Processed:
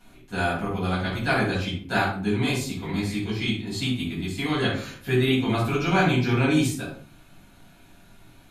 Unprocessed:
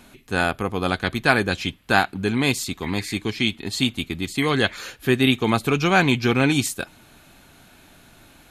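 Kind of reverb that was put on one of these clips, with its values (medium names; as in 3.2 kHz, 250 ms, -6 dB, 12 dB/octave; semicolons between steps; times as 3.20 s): simulated room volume 490 m³, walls furnished, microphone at 7.4 m; trim -15 dB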